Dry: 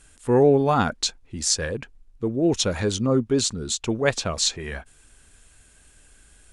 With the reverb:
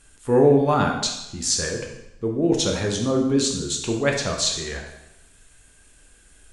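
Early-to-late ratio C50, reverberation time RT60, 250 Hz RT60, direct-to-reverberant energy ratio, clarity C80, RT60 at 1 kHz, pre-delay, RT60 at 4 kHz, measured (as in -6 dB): 5.0 dB, 0.90 s, 0.90 s, 1.0 dB, 8.0 dB, 0.90 s, 5 ms, 0.85 s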